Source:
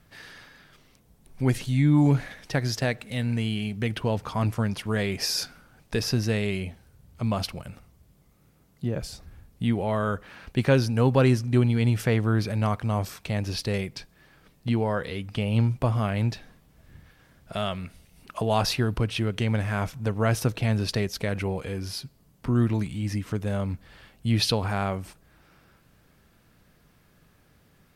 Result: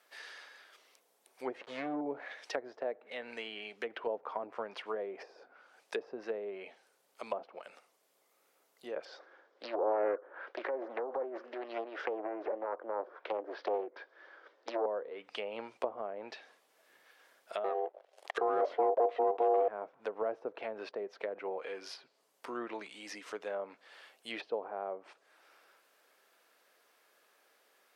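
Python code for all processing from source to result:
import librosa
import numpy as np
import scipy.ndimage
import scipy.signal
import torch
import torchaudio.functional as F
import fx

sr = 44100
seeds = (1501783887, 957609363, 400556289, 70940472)

y = fx.chain(x, sr, fx.leveller(passes=1),
    fx.backlash(play_db=-24.0), at=(1.61, 2.01))
y = fx.chain(y, sr, fx.over_compress(threshold_db=-25.0, ratio=-1.0),
    fx.cabinet(low_hz=270.0, low_slope=24, high_hz=4500.0, hz=(340.0, 540.0, 1000.0, 1500.0, 2600.0, 4200.0), db=(7, 7, 3, 8, -9, -7)),
    fx.doppler_dist(depth_ms=0.84), at=(9.05, 14.86))
y = fx.chain(y, sr, fx.leveller(passes=3),
    fx.ring_mod(carrier_hz=590.0), at=(17.64, 19.68))
y = scipy.signal.sosfilt(scipy.signal.butter(4, 440.0, 'highpass', fs=sr, output='sos'), y)
y = fx.env_lowpass_down(y, sr, base_hz=590.0, full_db=-28.0)
y = F.gain(torch.from_numpy(y), -3.0).numpy()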